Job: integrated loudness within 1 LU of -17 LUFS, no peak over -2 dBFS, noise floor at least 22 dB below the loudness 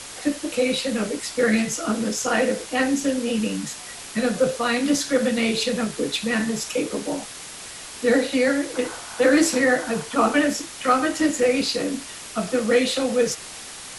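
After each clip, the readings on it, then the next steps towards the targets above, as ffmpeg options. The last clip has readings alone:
noise floor -38 dBFS; noise floor target -45 dBFS; loudness -22.5 LUFS; peak level -6.0 dBFS; loudness target -17.0 LUFS
-> -af "afftdn=nr=7:nf=-38"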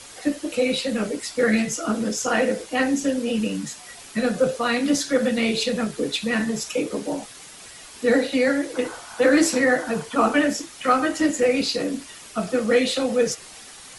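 noise floor -43 dBFS; noise floor target -45 dBFS
-> -af "afftdn=nr=6:nf=-43"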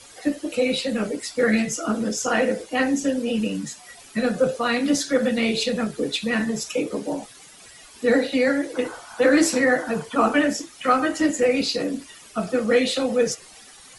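noise floor -47 dBFS; loudness -22.5 LUFS; peak level -6.0 dBFS; loudness target -17.0 LUFS
-> -af "volume=1.88,alimiter=limit=0.794:level=0:latency=1"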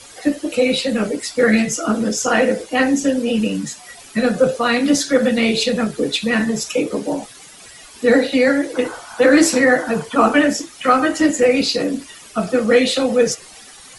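loudness -17.5 LUFS; peak level -2.0 dBFS; noise floor -41 dBFS

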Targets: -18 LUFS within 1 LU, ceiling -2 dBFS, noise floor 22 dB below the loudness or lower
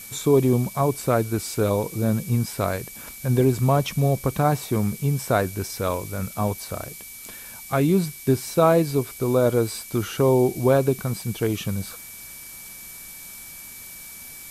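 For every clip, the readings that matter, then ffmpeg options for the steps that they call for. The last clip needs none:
steady tone 2.3 kHz; tone level -46 dBFS; noise floor -41 dBFS; noise floor target -45 dBFS; loudness -23.0 LUFS; peak level -5.0 dBFS; loudness target -18.0 LUFS
-> -af "bandreject=f=2300:w=30"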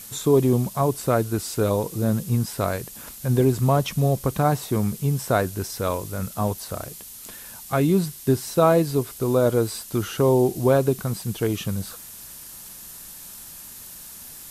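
steady tone not found; noise floor -41 dBFS; noise floor target -45 dBFS
-> -af "afftdn=nr=6:nf=-41"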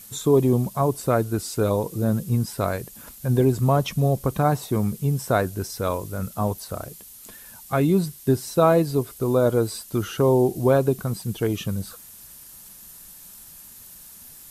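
noise floor -45 dBFS; loudness -23.0 LUFS; peak level -5.5 dBFS; loudness target -18.0 LUFS
-> -af "volume=1.78,alimiter=limit=0.794:level=0:latency=1"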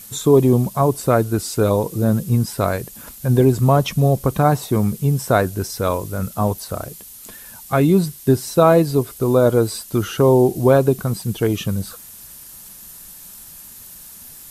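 loudness -18.0 LUFS; peak level -2.0 dBFS; noise floor -40 dBFS

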